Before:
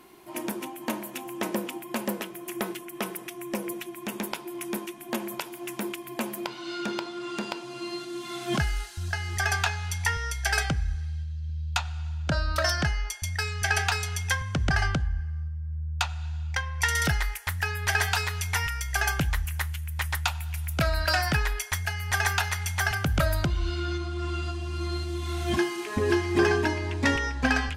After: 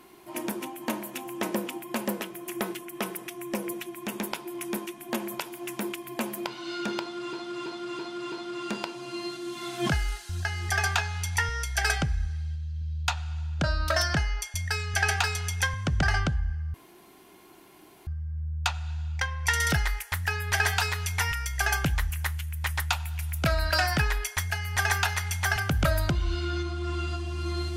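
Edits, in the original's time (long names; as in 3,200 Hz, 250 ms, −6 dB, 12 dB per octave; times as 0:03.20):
0:07.00–0:07.33: repeat, 5 plays
0:15.42: splice in room tone 1.33 s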